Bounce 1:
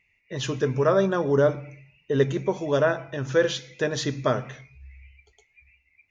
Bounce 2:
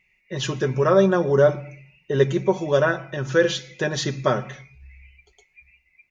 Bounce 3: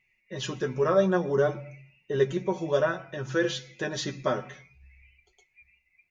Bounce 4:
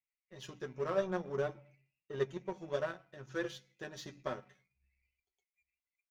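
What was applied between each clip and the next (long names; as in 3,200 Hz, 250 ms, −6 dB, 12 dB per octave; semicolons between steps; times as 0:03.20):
comb filter 5.4 ms, depth 58%; level +2 dB
flanger 0.56 Hz, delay 7.9 ms, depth 4.4 ms, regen +32%; level −2.5 dB
power curve on the samples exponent 1.4; hum removal 96.78 Hz, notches 3; level −8.5 dB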